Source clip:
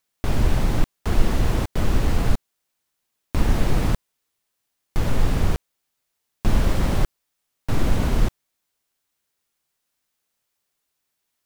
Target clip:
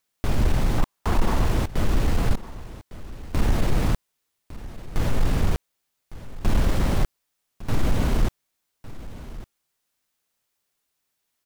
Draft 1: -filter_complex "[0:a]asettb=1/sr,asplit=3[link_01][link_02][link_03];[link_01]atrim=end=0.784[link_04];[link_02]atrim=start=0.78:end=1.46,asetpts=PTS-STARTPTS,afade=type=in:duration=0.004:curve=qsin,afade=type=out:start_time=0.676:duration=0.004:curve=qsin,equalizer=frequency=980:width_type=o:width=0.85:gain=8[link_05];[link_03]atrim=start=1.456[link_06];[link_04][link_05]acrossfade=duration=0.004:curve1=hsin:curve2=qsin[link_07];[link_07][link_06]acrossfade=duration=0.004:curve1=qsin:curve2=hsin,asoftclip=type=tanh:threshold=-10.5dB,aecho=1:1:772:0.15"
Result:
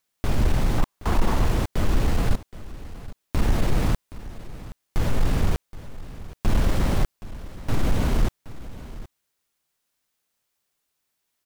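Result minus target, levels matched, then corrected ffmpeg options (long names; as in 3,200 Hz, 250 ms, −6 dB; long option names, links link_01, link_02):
echo 384 ms early
-filter_complex "[0:a]asettb=1/sr,asplit=3[link_01][link_02][link_03];[link_01]atrim=end=0.784[link_04];[link_02]atrim=start=0.78:end=1.46,asetpts=PTS-STARTPTS,afade=type=in:duration=0.004:curve=qsin,afade=type=out:start_time=0.676:duration=0.004:curve=qsin,equalizer=frequency=980:width_type=o:width=0.85:gain=8[link_05];[link_03]atrim=start=1.456[link_06];[link_04][link_05]acrossfade=duration=0.004:curve1=hsin:curve2=qsin[link_07];[link_07][link_06]acrossfade=duration=0.004:curve1=qsin:curve2=hsin,asoftclip=type=tanh:threshold=-10.5dB,aecho=1:1:1156:0.15"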